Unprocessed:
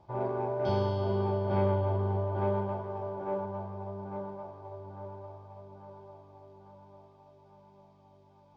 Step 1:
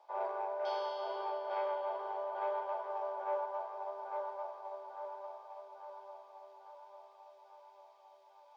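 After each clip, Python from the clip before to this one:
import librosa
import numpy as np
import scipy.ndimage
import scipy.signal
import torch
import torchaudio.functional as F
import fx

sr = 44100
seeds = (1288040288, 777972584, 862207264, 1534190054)

y = scipy.signal.sosfilt(scipy.signal.cheby2(4, 50, 220.0, 'highpass', fs=sr, output='sos'), x)
y = fx.rider(y, sr, range_db=3, speed_s=0.5)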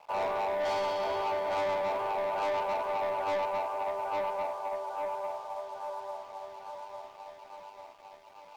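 y = fx.leveller(x, sr, passes=3)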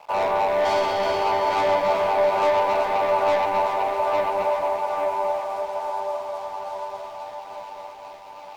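y = fx.echo_alternate(x, sr, ms=190, hz=920.0, feedback_pct=79, wet_db=-4.5)
y = y * 10.0 ** (8.5 / 20.0)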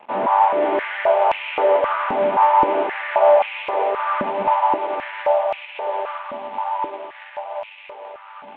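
y = fx.cvsd(x, sr, bps=16000)
y = fx.filter_held_highpass(y, sr, hz=3.8, low_hz=230.0, high_hz=2500.0)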